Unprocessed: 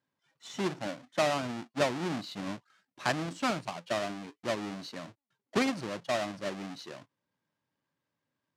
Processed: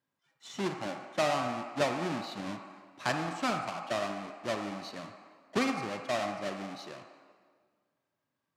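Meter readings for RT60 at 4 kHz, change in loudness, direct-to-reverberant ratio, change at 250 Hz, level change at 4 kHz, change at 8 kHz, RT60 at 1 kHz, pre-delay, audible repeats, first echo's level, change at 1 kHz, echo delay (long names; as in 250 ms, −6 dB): 1.4 s, −0.5 dB, 3.0 dB, −1.0 dB, −1.0 dB, −1.5 dB, 1.6 s, 28 ms, no echo audible, no echo audible, +1.5 dB, no echo audible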